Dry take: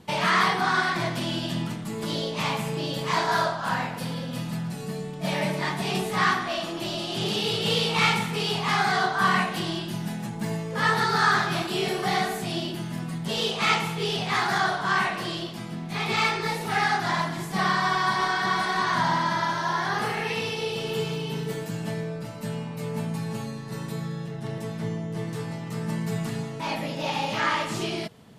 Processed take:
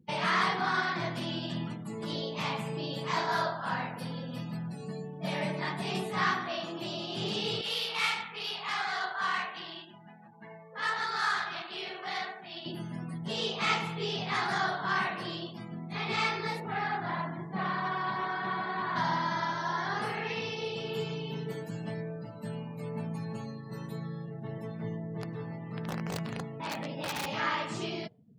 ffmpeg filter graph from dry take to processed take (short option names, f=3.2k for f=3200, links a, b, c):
-filter_complex "[0:a]asettb=1/sr,asplit=3[a][b][c];[a]atrim=end=7.614[d];[b]atrim=start=7.61:end=12.66,asetpts=PTS-STARTPTS,afade=t=in:d=0.004:c=qsin,afade=t=out:st=5.046:d=0.004:c=qsin,highpass=f=1.3k:p=1,adynamicsmooth=sensitivity=7.5:basefreq=1.7k,aecho=1:1:74:0.299,atrim=end_sample=222705[e];[c]atrim=start=12.656[f];[d][e]acrossfade=d=0.004:c1=hsin:c2=qsin[g];[g][f]acrossfade=d=0.004:c1=qsin:c2=hsin,asettb=1/sr,asplit=3[h][i][j];[h]atrim=end=16.604[k];[i]atrim=start=16.6:end=18.96,asetpts=PTS-STARTPTS,afade=t=in:d=0.004:c=qsin,afade=t=out:st=2.356:d=0.004:c=qsin,lowpass=f=1.7k:p=1,volume=21.5dB,asoftclip=hard,volume=-21.5dB[l];[j]atrim=start=18.956[m];[k][l]acrossfade=d=0.004:c1=hsin:c2=qsin[n];[n][m]acrossfade=d=0.004:c1=qsin:c2=hsin,asettb=1/sr,asplit=3[o][p][q];[o]atrim=end=25.134[r];[p]atrim=start=25.13:end=27.27,asetpts=PTS-STARTPTS,afade=t=in:d=0.004:c=qsin,afade=t=out:st=2.136:d=0.004:c=qsin,equalizer=f=11k:w=0.6:g=-9,aeval=exprs='(mod(11.9*val(0)+1,2)-1)/11.9':c=same[s];[q]atrim=start=27.266[t];[r][s]acrossfade=d=0.004:c1=hsin:c2=qsin[u];[u][t]acrossfade=d=0.004:c1=qsin:c2=hsin,highpass=79,afftdn=nr=31:nf=-43,volume=-6dB"